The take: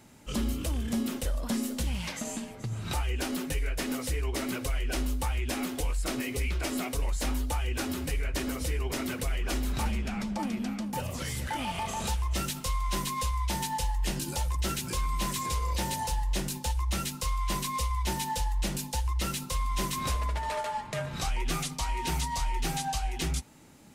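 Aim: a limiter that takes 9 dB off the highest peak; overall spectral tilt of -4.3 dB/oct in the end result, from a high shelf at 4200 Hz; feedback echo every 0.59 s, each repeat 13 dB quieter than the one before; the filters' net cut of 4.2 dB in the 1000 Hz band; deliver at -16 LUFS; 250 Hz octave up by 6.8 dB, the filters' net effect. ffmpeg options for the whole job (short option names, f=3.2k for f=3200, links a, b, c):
-af "equalizer=f=250:t=o:g=8,equalizer=f=1k:t=o:g=-5.5,highshelf=f=4.2k:g=4.5,alimiter=limit=-23.5dB:level=0:latency=1,aecho=1:1:590|1180|1770:0.224|0.0493|0.0108,volume=16dB"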